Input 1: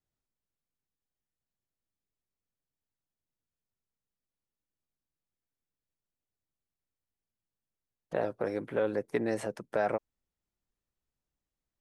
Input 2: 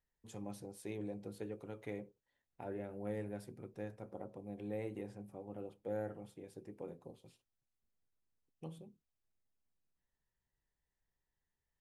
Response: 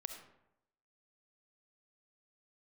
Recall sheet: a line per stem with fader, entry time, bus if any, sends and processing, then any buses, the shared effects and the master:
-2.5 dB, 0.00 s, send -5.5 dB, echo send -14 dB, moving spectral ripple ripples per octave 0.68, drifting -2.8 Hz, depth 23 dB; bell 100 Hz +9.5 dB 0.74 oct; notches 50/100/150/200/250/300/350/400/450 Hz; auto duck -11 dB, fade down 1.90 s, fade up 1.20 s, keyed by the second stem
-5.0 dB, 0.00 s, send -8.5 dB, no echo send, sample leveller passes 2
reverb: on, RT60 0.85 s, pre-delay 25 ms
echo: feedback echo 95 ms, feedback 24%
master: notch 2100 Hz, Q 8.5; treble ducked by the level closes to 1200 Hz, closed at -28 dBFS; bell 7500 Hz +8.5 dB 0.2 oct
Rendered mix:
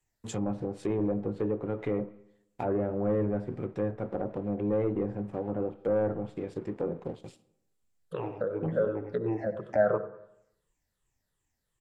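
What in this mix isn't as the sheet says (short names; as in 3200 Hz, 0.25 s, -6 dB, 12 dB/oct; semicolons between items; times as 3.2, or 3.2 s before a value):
stem 2 -5.0 dB -> +6.5 dB; master: missing notch 2100 Hz, Q 8.5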